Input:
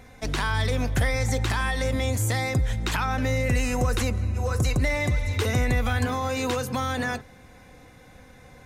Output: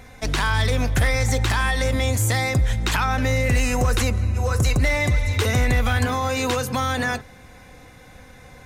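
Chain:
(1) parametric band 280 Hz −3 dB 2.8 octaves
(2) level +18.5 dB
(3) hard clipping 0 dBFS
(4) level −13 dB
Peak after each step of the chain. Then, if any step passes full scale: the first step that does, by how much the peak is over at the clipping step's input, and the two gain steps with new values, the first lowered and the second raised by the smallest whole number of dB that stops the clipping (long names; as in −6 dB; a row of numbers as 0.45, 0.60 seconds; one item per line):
−14.5, +4.0, 0.0, −13.0 dBFS
step 2, 4.0 dB
step 2 +14.5 dB, step 4 −9 dB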